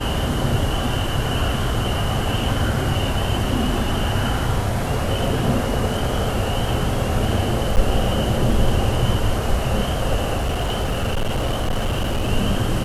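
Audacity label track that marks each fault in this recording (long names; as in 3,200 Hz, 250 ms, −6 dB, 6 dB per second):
7.760000	7.770000	drop-out 9 ms
10.360000	12.310000	clipping −17.5 dBFS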